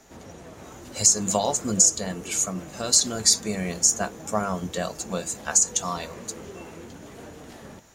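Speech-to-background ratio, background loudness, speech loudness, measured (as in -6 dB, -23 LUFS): 19.5 dB, -42.0 LUFS, -22.5 LUFS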